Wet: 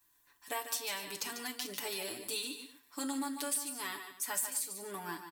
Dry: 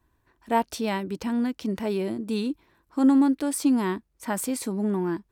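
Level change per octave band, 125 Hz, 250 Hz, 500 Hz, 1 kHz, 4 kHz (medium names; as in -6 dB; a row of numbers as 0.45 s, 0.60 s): no reading, -21.0 dB, -15.0 dB, -12.0 dB, +1.0 dB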